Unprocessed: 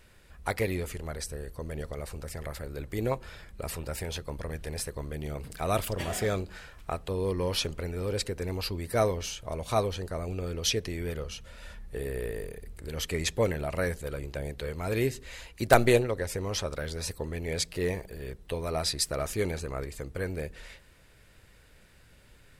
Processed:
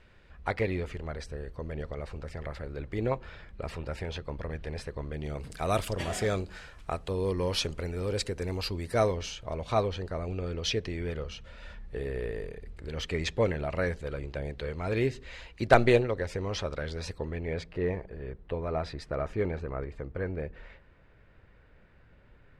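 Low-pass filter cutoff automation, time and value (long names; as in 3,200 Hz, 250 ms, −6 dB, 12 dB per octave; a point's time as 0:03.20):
0:05.06 3,400 Hz
0:05.49 8,500 Hz
0:08.69 8,500 Hz
0:09.60 4,100 Hz
0:17.07 4,100 Hz
0:17.66 1,800 Hz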